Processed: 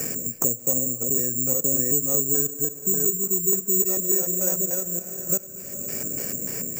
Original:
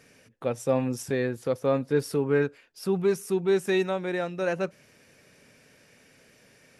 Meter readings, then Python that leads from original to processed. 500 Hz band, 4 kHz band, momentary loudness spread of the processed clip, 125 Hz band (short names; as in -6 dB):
-5.0 dB, n/a, 8 LU, -1.5 dB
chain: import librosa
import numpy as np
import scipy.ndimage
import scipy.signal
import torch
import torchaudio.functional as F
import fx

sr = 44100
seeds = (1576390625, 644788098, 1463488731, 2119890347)

y = fx.reverse_delay(x, sr, ms=384, wet_db=-2)
y = fx.filter_lfo_lowpass(y, sr, shape='square', hz=3.4, low_hz=360.0, high_hz=3000.0, q=1.2)
y = fx.tilt_shelf(y, sr, db=7.5, hz=970.0)
y = fx.spec_box(y, sr, start_s=1.29, length_s=0.24, low_hz=240.0, high_hz=1300.0, gain_db=-7)
y = y * (1.0 - 0.5 / 2.0 + 0.5 / 2.0 * np.cos(2.0 * np.pi * 0.5 * (np.arange(len(y)) / sr)))
y = fx.echo_wet_highpass(y, sr, ms=235, feedback_pct=33, hz=1900.0, wet_db=-15)
y = fx.rev_schroeder(y, sr, rt60_s=2.7, comb_ms=28, drr_db=16.0)
y = (np.kron(scipy.signal.resample_poly(y, 1, 6), np.eye(6)[0]) * 6)[:len(y)]
y = fx.band_squash(y, sr, depth_pct=100)
y = y * librosa.db_to_amplitude(-10.0)